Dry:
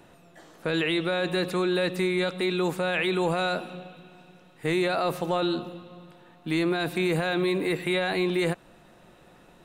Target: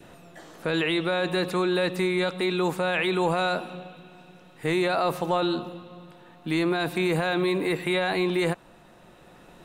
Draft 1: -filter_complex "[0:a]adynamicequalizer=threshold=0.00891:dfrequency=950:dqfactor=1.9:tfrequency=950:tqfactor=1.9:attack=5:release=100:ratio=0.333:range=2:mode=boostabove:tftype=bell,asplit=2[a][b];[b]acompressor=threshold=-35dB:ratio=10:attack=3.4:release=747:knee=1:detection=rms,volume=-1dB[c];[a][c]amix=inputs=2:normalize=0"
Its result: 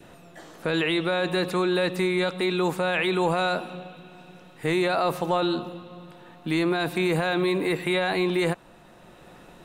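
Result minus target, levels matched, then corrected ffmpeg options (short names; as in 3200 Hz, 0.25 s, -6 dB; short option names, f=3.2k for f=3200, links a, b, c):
compressor: peak gain reduction -8.5 dB
-filter_complex "[0:a]adynamicequalizer=threshold=0.00891:dfrequency=950:dqfactor=1.9:tfrequency=950:tqfactor=1.9:attack=5:release=100:ratio=0.333:range=2:mode=boostabove:tftype=bell,asplit=2[a][b];[b]acompressor=threshold=-44.5dB:ratio=10:attack=3.4:release=747:knee=1:detection=rms,volume=-1dB[c];[a][c]amix=inputs=2:normalize=0"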